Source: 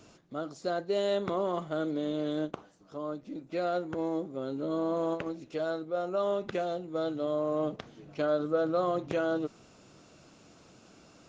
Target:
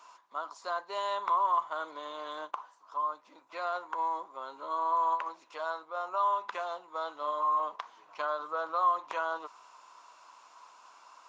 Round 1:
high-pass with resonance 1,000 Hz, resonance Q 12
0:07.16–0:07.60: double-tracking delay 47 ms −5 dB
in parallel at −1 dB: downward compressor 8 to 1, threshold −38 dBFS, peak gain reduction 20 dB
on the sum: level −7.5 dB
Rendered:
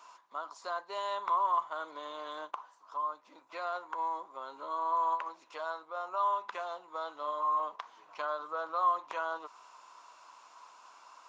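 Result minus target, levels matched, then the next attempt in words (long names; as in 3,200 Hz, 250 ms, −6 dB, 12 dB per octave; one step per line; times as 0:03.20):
downward compressor: peak gain reduction +9 dB
high-pass with resonance 1,000 Hz, resonance Q 12
0:07.16–0:07.60: double-tracking delay 47 ms −5 dB
in parallel at −1 dB: downward compressor 8 to 1, threshold −27.5 dBFS, peak gain reduction 11 dB
on the sum: level −7.5 dB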